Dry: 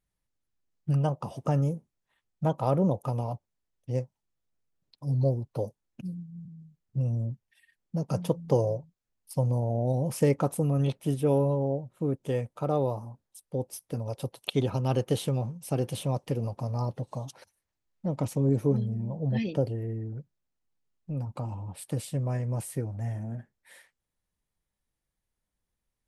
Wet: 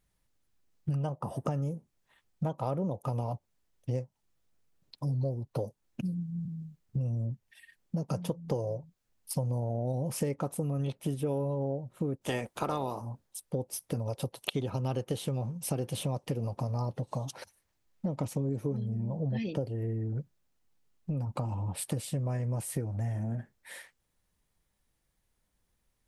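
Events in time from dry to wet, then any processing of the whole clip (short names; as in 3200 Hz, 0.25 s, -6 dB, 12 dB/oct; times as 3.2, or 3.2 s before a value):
1.19–1.46 spectral gain 2000–8000 Hz -9 dB
12.21–13 spectral limiter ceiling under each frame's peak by 19 dB
whole clip: compressor 5:1, threshold -38 dBFS; gain +7.5 dB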